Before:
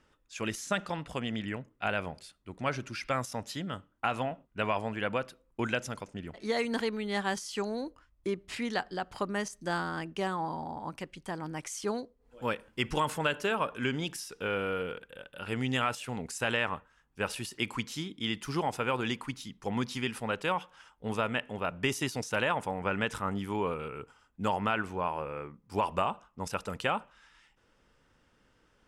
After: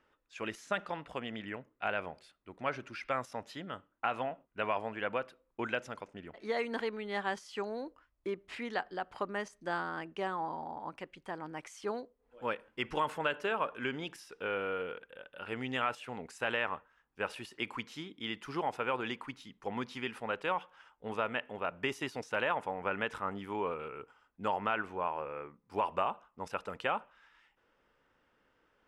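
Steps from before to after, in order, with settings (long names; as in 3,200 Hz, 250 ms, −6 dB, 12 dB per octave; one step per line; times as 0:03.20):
bass and treble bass −10 dB, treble −13 dB
level −2 dB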